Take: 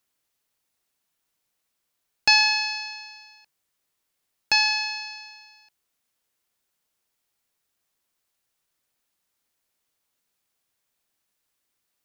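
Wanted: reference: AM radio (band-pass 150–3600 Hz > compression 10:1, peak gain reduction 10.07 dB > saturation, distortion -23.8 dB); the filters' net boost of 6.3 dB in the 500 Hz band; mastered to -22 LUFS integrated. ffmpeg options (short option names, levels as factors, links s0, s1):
-af "highpass=150,lowpass=3600,equalizer=f=500:t=o:g=8,acompressor=threshold=0.0631:ratio=10,asoftclip=threshold=0.237,volume=2.37"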